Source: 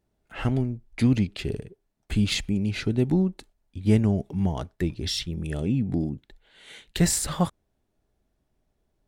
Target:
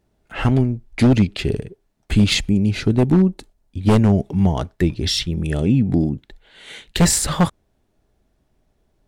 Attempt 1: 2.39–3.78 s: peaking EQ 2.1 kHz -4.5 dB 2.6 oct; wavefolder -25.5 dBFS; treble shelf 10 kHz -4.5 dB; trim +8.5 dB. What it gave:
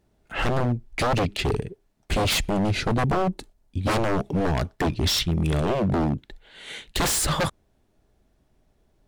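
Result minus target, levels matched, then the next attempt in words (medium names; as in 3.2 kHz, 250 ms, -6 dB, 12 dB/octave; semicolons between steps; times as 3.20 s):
wavefolder: distortion +20 dB
2.39–3.78 s: peaking EQ 2.1 kHz -4.5 dB 2.6 oct; wavefolder -15.5 dBFS; treble shelf 10 kHz -4.5 dB; trim +8.5 dB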